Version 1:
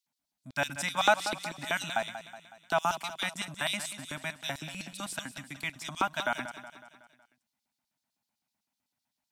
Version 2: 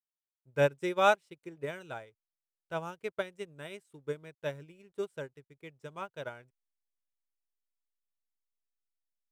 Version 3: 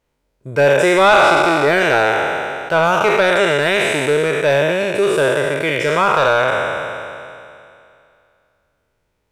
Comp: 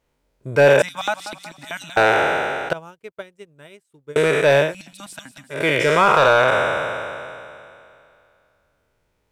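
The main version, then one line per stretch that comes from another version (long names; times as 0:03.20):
3
0:00.82–0:01.97: punch in from 1
0:02.73–0:04.16: punch in from 2
0:04.67–0:05.57: punch in from 1, crossfade 0.16 s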